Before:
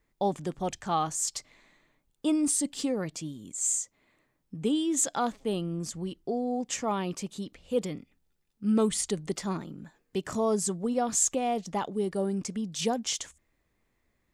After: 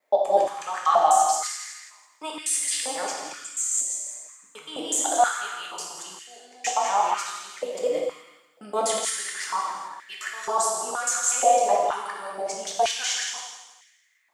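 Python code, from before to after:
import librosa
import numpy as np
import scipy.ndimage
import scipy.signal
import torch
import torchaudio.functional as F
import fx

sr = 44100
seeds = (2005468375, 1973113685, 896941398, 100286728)

y = fx.local_reverse(x, sr, ms=123.0)
y = fx.transient(y, sr, attack_db=-2, sustain_db=4)
y = fx.echo_feedback(y, sr, ms=166, feedback_pct=39, wet_db=-12)
y = fx.rev_gated(y, sr, seeds[0], gate_ms=460, shape='falling', drr_db=-2.5)
y = fx.filter_held_highpass(y, sr, hz=2.1, low_hz=600.0, high_hz=1900.0)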